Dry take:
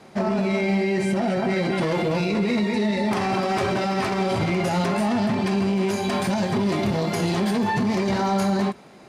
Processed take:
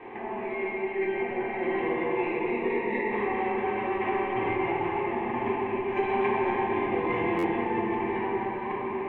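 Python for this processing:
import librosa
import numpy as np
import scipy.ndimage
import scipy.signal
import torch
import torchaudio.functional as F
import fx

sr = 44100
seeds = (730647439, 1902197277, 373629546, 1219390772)

y = scipy.signal.sosfilt(scipy.signal.butter(4, 2500.0, 'lowpass', fs=sr, output='sos'), x)
y = fx.low_shelf(y, sr, hz=200.0, db=-8.5)
y = fx.over_compress(y, sr, threshold_db=-30.0, ratio=-0.5)
y = fx.fixed_phaser(y, sr, hz=920.0, stages=8)
y = fx.echo_alternate(y, sr, ms=120, hz=800.0, feedback_pct=78, wet_db=-5.5)
y = fx.room_shoebox(y, sr, seeds[0], volume_m3=190.0, walls='hard', distance_m=0.84)
y = fx.buffer_glitch(y, sr, at_s=(7.38,), block=512, repeats=4)
y = fx.transformer_sat(y, sr, knee_hz=180.0)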